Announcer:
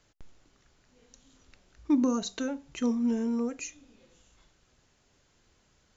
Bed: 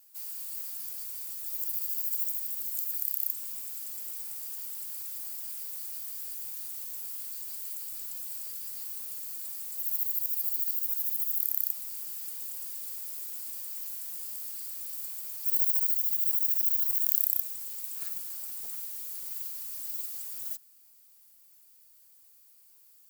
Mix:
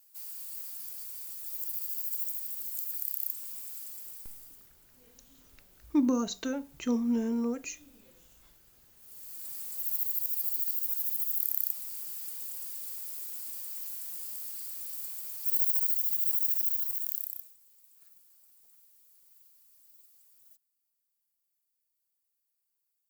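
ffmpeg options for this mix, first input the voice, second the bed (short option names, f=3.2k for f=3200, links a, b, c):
-filter_complex "[0:a]adelay=4050,volume=-1dB[a];[1:a]volume=19.5dB,afade=t=out:st=3.78:d=0.94:silence=0.0944061,afade=t=in:st=8.96:d=0.62:silence=0.0749894,afade=t=out:st=16.48:d=1.09:silence=0.0841395[b];[a][b]amix=inputs=2:normalize=0"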